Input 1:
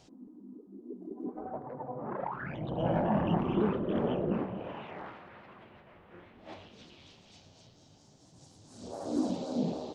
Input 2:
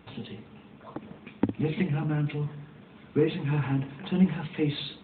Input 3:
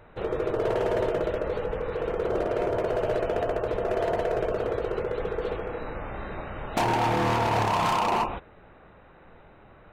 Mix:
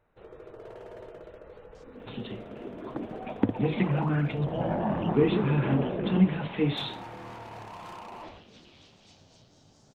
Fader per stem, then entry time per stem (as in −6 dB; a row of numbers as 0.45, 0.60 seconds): 0.0, +1.0, −19.0 decibels; 1.75, 2.00, 0.00 seconds